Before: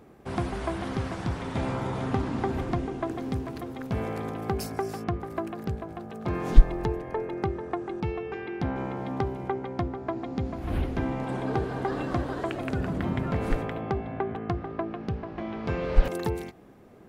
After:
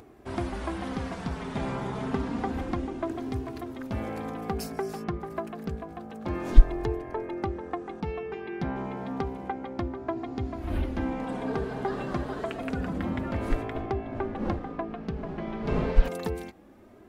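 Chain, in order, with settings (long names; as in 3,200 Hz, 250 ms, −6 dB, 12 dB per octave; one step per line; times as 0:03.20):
0:13.74–0:15.91: wind on the microphone 350 Hz −30 dBFS
upward compression, threshold −47 dBFS
flanger 0.29 Hz, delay 2.7 ms, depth 2.4 ms, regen −26%
level +2 dB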